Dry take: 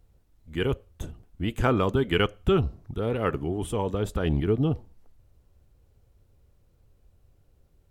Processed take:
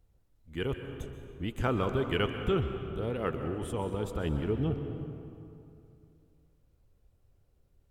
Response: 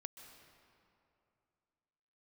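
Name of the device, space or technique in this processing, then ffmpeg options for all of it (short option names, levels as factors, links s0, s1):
stairwell: -filter_complex "[1:a]atrim=start_sample=2205[s0];[0:a][s0]afir=irnorm=-1:irlink=0,volume=0.891"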